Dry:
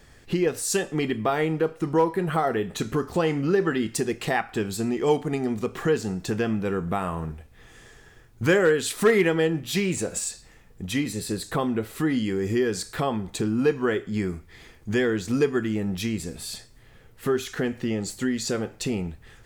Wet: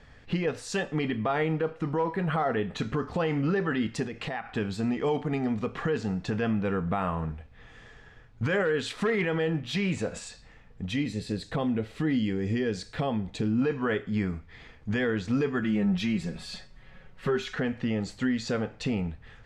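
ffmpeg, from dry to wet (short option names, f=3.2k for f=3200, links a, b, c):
-filter_complex "[0:a]asettb=1/sr,asplit=3[a][b][c];[a]atrim=end=4.034[d];[b]atrim=start=4.03:end=4.52,asetpts=PTS-STARTPTS,afade=t=in:d=0.004:c=qsin,afade=t=out:st=0.486:d=0.004:c=qsin,acompressor=threshold=-29dB:ratio=6:attack=3.2:release=140:knee=1:detection=peak[e];[c]atrim=start=4.516[f];[d][e]acrossfade=d=0.004:c1=hsin:c2=qsin[g];[g][f]acrossfade=d=0.004:c1=qsin:c2=hsin,asettb=1/sr,asplit=3[h][i][j];[h]atrim=end=10.914[k];[i]atrim=start=10.91:end=13.62,asetpts=PTS-STARTPTS,afade=t=in:d=0.004:c=qsin,afade=t=out:st=2.706:d=0.004:c=qsin,equalizer=f=1.2k:t=o:w=1.1:g=-8[l];[j]atrim=start=13.616[m];[k][l]acrossfade=d=0.004:c1=hsin:c2=qsin[n];[n][m]acrossfade=d=0.004:c1=qsin:c2=hsin,asettb=1/sr,asplit=3[o][p][q];[o]atrim=end=15.624[r];[p]atrim=start=15.62:end=17.56,asetpts=PTS-STARTPTS,afade=t=in:d=0.004:c=qsin,afade=t=out:st=1.936:d=0.004:c=qsin,aecho=1:1:5.4:0.73,atrim=end_sample=85554[s];[q]atrim=start=17.556[t];[r][s]acrossfade=d=0.004:c1=hsin:c2=qsin[u];[u][t]acrossfade=d=0.004:c1=qsin:c2=hsin,lowpass=3.6k,equalizer=f=360:w=7.7:g=-14.5,alimiter=limit=-18.5dB:level=0:latency=1:release=14"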